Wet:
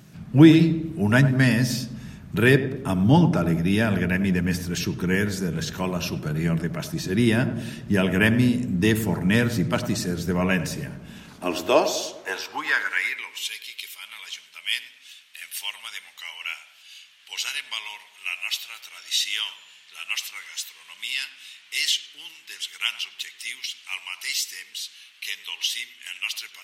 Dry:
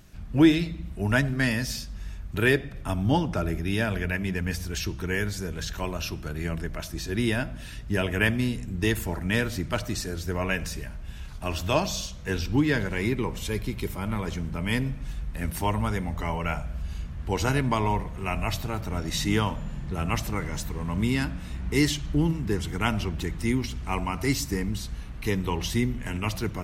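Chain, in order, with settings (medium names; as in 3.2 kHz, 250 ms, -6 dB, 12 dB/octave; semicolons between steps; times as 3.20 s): high-pass sweep 150 Hz -> 3 kHz, 10.93–13.51 s; filtered feedback delay 100 ms, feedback 61%, low-pass 980 Hz, level -10 dB; trim +3 dB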